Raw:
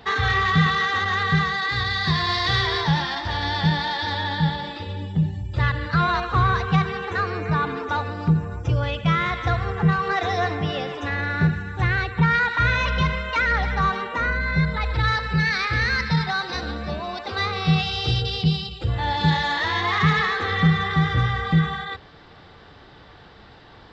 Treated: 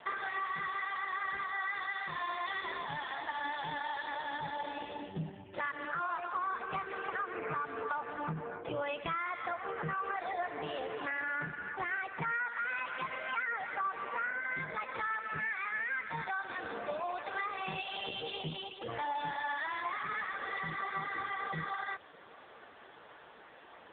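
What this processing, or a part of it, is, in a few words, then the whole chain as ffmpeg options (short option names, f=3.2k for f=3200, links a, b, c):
voicemail: -af "highpass=380,lowpass=3.3k,acompressor=threshold=-31dB:ratio=12" -ar 8000 -c:a libopencore_amrnb -b:a 5150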